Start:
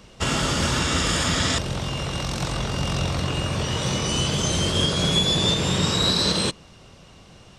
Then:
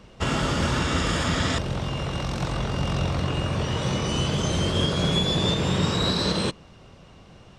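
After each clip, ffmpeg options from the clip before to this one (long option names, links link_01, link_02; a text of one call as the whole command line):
ffmpeg -i in.wav -af "highshelf=frequency=3700:gain=-10.5" out.wav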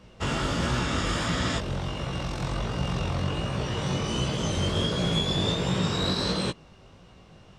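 ffmpeg -i in.wav -af "flanger=delay=16:depth=5.3:speed=1.4" out.wav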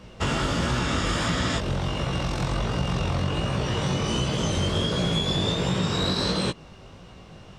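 ffmpeg -i in.wav -af "acompressor=threshold=-29dB:ratio=2.5,volume=6dB" out.wav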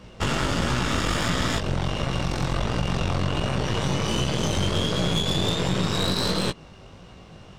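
ffmpeg -i in.wav -af "aeval=exprs='0.282*(cos(1*acos(clip(val(0)/0.282,-1,1)))-cos(1*PI/2))+0.0282*(cos(8*acos(clip(val(0)/0.282,-1,1)))-cos(8*PI/2))':channel_layout=same" out.wav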